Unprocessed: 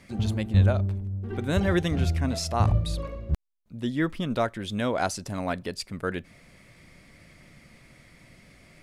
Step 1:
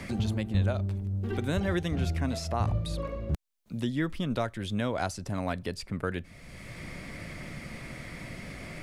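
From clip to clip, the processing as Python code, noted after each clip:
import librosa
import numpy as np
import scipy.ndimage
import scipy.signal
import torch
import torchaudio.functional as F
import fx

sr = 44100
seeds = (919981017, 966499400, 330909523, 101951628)

y = fx.band_squash(x, sr, depth_pct=70)
y = y * librosa.db_to_amplitude(-3.5)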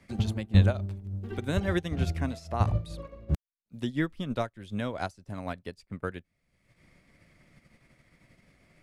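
y = fx.upward_expand(x, sr, threshold_db=-46.0, expansion=2.5)
y = y * librosa.db_to_amplitude(8.0)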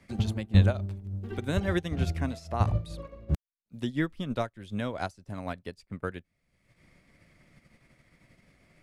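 y = x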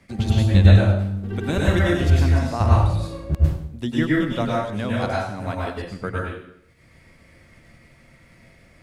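y = fx.rev_plate(x, sr, seeds[0], rt60_s=0.73, hf_ratio=0.85, predelay_ms=90, drr_db=-5.0)
y = y * librosa.db_to_amplitude(4.0)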